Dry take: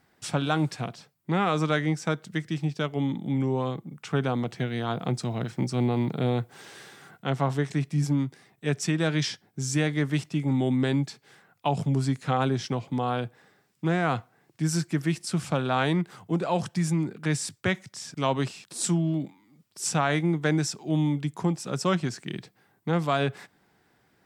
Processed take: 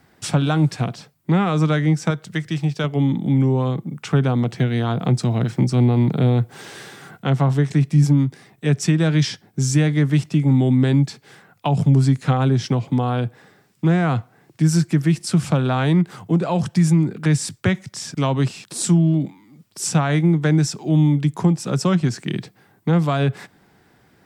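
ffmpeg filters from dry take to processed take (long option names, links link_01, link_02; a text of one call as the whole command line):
ffmpeg -i in.wav -filter_complex "[0:a]asettb=1/sr,asplit=3[link_01][link_02][link_03];[link_01]atrim=end=2.104[link_04];[link_02]atrim=start=2.1:end=2.84,asetpts=PTS-STARTPTS,afade=type=in:duration=0.004:curve=qsin,afade=type=out:start_time=0.736:duration=0.004:curve=qsin,equalizer=frequency=240:width=1.1:gain=-8[link_05];[link_03]atrim=start=2.836[link_06];[link_04][link_05]acrossfade=duration=0.004:curve1=hsin:curve2=qsin[link_07];[link_07][link_06]acrossfade=duration=0.004:curve1=qsin:curve2=hsin,lowshelf=frequency=340:gain=4.5,acrossover=split=200[link_08][link_09];[link_09]acompressor=threshold=-32dB:ratio=2[link_10];[link_08][link_10]amix=inputs=2:normalize=0,volume=8dB" out.wav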